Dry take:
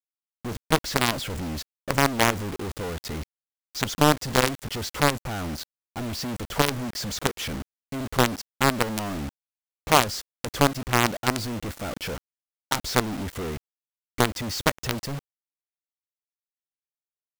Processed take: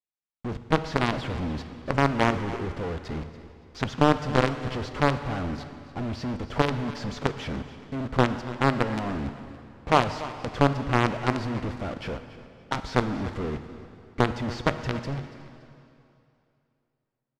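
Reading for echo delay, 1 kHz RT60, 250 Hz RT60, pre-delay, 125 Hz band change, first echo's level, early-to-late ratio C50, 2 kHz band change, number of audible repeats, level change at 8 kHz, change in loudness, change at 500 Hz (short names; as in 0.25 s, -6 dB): 0.284 s, 2.7 s, 2.6 s, 7 ms, +1.5 dB, -16.5 dB, 10.0 dB, -3.0 dB, 2, -16.0 dB, -1.5 dB, 0.0 dB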